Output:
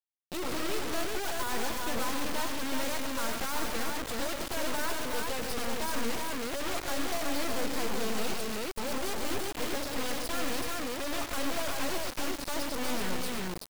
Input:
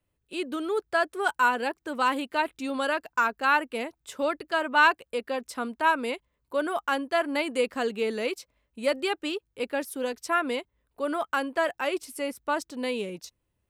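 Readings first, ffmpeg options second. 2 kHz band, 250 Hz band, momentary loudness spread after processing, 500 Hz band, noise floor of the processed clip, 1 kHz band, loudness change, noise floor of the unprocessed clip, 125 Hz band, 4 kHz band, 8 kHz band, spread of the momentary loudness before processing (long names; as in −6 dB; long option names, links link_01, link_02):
−9.0 dB, −3.0 dB, 2 LU, −7.0 dB, −40 dBFS, −9.0 dB, −5.5 dB, −79 dBFS, can't be measured, +0.5 dB, +8.0 dB, 10 LU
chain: -af "asoftclip=type=tanh:threshold=-16.5dB,equalizer=frequency=2600:width=0.75:gain=-8.5,aresample=11025,aresample=44100,bass=frequency=250:gain=9,treble=frequency=4000:gain=12,aeval=exprs='val(0)+0.00178*(sin(2*PI*50*n/s)+sin(2*PI*2*50*n/s)/2+sin(2*PI*3*50*n/s)/3+sin(2*PI*4*50*n/s)/4+sin(2*PI*5*50*n/s)/5)':channel_layout=same,volume=29.5dB,asoftclip=hard,volume=-29.5dB,bandreject=frequency=60:width_type=h:width=6,bandreject=frequency=120:width_type=h:width=6,bandreject=frequency=180:width_type=h:width=6,bandreject=frequency=240:width_type=h:width=6,bandreject=frequency=300:width_type=h:width=6,aeval=exprs='0.0596*(cos(1*acos(clip(val(0)/0.0596,-1,1)))-cos(1*PI/2))+0.000596*(cos(3*acos(clip(val(0)/0.0596,-1,1)))-cos(3*PI/2))+0.0266*(cos(8*acos(clip(val(0)/0.0596,-1,1)))-cos(8*PI/2))':channel_layout=same,aecho=1:1:99|130|232|314|378|617:0.158|0.299|0.133|0.211|0.631|0.126,acrusher=bits=6:dc=4:mix=0:aa=0.000001,volume=-5.5dB"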